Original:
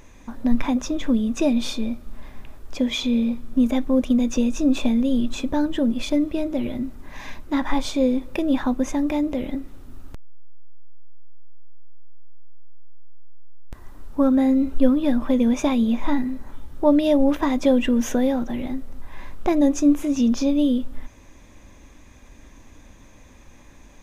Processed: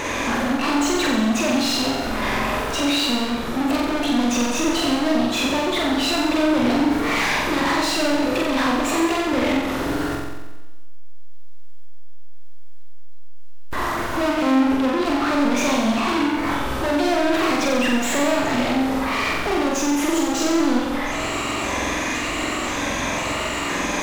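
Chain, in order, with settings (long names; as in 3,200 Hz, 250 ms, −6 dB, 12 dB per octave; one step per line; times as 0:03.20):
pitch shifter gated in a rhythm +2.5 semitones, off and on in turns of 515 ms
downward compressor 5 to 1, threshold −30 dBFS, peak gain reduction 18.5 dB
mid-hump overdrive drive 37 dB, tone 3,100 Hz, clips at −16 dBFS
gain into a clipping stage and back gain 24 dB
flutter between parallel walls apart 7.8 metres, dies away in 1.1 s
level +2 dB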